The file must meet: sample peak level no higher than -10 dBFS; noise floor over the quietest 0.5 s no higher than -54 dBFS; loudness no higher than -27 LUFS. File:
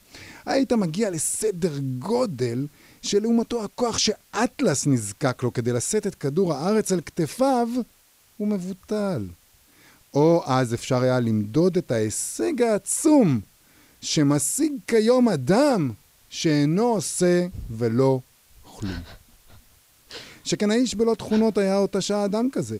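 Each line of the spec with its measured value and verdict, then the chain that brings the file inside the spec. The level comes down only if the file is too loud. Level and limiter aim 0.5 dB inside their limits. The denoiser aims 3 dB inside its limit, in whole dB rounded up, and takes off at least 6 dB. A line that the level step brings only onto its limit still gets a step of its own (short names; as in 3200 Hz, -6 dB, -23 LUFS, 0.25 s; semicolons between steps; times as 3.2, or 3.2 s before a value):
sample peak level -7.0 dBFS: fail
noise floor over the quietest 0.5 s -58 dBFS: OK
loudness -23.0 LUFS: fail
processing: gain -4.5 dB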